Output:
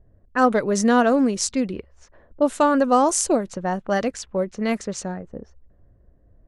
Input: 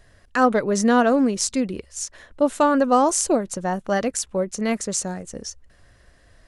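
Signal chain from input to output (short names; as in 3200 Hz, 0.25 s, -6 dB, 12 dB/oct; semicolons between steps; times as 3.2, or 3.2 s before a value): low-pass opened by the level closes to 400 Hz, open at -17.5 dBFS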